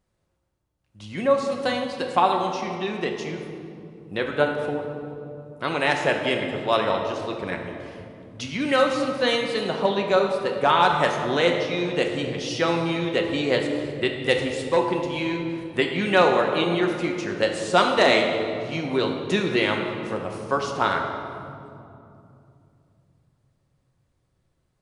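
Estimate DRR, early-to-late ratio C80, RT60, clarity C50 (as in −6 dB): 1.5 dB, 5.5 dB, 2.7 s, 4.5 dB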